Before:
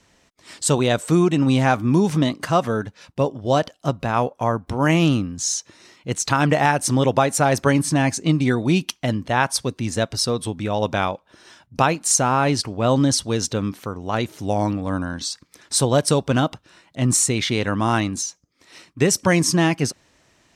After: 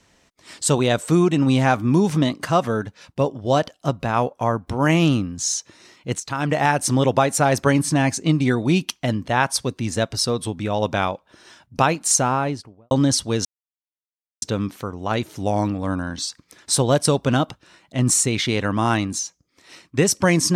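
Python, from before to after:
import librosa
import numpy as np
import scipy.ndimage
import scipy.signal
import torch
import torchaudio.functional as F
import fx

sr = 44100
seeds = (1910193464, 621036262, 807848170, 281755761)

y = fx.studio_fade_out(x, sr, start_s=12.14, length_s=0.77)
y = fx.edit(y, sr, fx.fade_in_from(start_s=6.2, length_s=0.53, floor_db=-13.0),
    fx.insert_silence(at_s=13.45, length_s=0.97), tone=tone)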